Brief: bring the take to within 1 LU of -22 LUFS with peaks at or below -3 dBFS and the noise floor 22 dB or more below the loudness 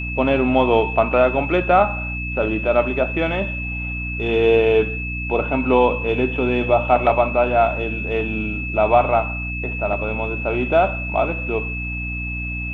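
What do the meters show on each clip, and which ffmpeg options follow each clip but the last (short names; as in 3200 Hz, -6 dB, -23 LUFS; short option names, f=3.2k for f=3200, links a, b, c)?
hum 60 Hz; harmonics up to 300 Hz; hum level -26 dBFS; steady tone 2600 Hz; tone level -27 dBFS; loudness -19.5 LUFS; peak -2.5 dBFS; loudness target -22.0 LUFS
-> -af "bandreject=f=60:t=h:w=4,bandreject=f=120:t=h:w=4,bandreject=f=180:t=h:w=4,bandreject=f=240:t=h:w=4,bandreject=f=300:t=h:w=4"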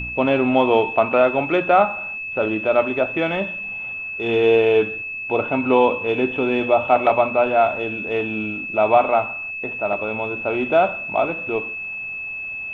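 hum none; steady tone 2600 Hz; tone level -27 dBFS
-> -af "bandreject=f=2.6k:w=30"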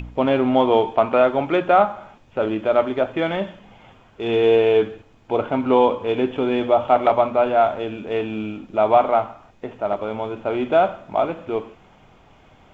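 steady tone none; loudness -20.0 LUFS; peak -3.5 dBFS; loudness target -22.0 LUFS
-> -af "volume=-2dB"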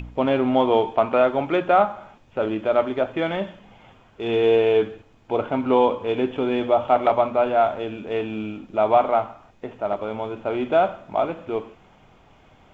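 loudness -22.0 LUFS; peak -5.5 dBFS; noise floor -54 dBFS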